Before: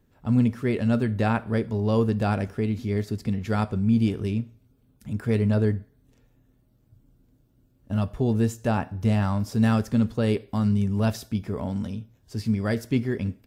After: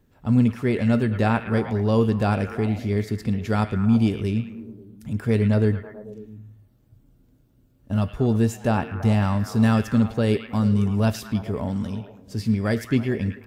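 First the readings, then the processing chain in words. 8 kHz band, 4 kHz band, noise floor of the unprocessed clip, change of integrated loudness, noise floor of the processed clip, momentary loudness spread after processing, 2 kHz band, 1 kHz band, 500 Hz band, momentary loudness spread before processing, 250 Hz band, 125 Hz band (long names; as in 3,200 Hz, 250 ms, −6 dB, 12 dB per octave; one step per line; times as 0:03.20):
+2.5 dB, +3.0 dB, −63 dBFS, +2.5 dB, −59 dBFS, 11 LU, +3.5 dB, +3.0 dB, +2.5 dB, 9 LU, +2.5 dB, +2.5 dB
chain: echo through a band-pass that steps 109 ms, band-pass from 2,500 Hz, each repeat −0.7 octaves, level −6 dB
level +2.5 dB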